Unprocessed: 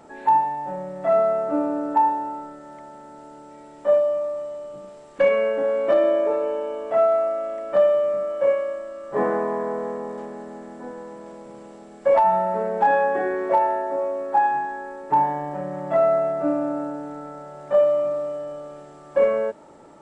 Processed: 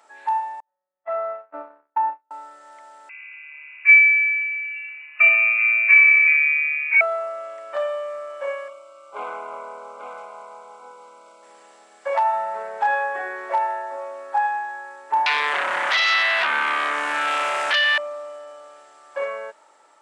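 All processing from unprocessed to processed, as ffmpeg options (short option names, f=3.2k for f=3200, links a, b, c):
-filter_complex "[0:a]asettb=1/sr,asplit=3[a][b][c];[a]atrim=end=0.604[d];[b]atrim=start=0.6:end=2.31,asetpts=PTS-STARTPTS,afade=t=in:d=0.004:c=qsin,afade=t=out:st=1.706:d=0.004:c=qsin,agate=range=-42dB:threshold=-23dB:ratio=16:release=100:detection=peak,lowpass=2.2k[e];[c]atrim=start=2.306[f];[d][e]acrossfade=d=0.004:c1=hsin:c2=qsin[g];[g][f]acrossfade=d=0.004:c1=qsin:c2=hsin,asettb=1/sr,asplit=3[h][i][j];[h]atrim=end=3.094[k];[i]atrim=start=3.09:end=7.01,asetpts=PTS-STARTPTS,afade=t=in:d=0.004:c=qsin,afade=t=out:st=3.916:d=0.004:c=qsin,aecho=1:1:4.9:0.62,atrim=end_sample=172872,lowpass=f=2.5k:t=q:w=0.5098,lowpass=f=2.5k:t=q:w=0.6013,lowpass=f=2.5k:t=q:w=0.9,lowpass=f=2.5k:t=q:w=2.563,afreqshift=-2900[l];[j]atrim=start=7.006[m];[k][l]acrossfade=d=0.004:c1=hsin:c2=qsin[n];[n][m]acrossfade=d=0.004:c1=qsin:c2=hsin,asettb=1/sr,asplit=3[o][p][q];[o]atrim=end=8.684[r];[p]atrim=start=8.68:end=11.43,asetpts=PTS-STARTPTS,afade=t=in:d=0.004:c=qsin,afade=t=out:st=2.746:d=0.004:c=qsin,aeval=exprs='(tanh(5.62*val(0)+0.65)-tanh(0.65))/5.62':c=same,asuperstop=centerf=1800:order=20:qfactor=4.3,aecho=1:1:841:0.473,atrim=end_sample=121275[s];[q]atrim=start=11.426[t];[r][s]acrossfade=d=0.004:c1=hsin:c2=qsin[u];[u][t]acrossfade=d=0.004:c1=qsin:c2=hsin,asettb=1/sr,asplit=3[v][w][x];[v]atrim=end=15.264[y];[w]atrim=start=15.26:end=17.98,asetpts=PTS-STARTPTS,afade=t=in:d=0.004:c=qsin,afade=t=out:st=2.716:d=0.004:c=qsin,acompressor=threshold=-34dB:ratio=3:attack=3.2:release=140:knee=1:detection=peak,aeval=exprs='0.133*sin(PI/2*8.91*val(0)/0.133)':c=same[z];[x]atrim=start=17.976[aa];[y][z]acrossfade=d=0.004:c1=hsin:c2=qsin[ab];[ab][aa]acrossfade=d=0.004:c1=qsin:c2=hsin,highpass=1.1k,dynaudnorm=f=740:g=5:m=3.5dB"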